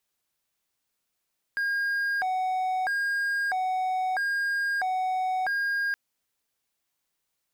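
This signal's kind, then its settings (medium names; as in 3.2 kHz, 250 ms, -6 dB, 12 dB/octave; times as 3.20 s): siren hi-lo 746–1620 Hz 0.77 per s triangle -22.5 dBFS 4.37 s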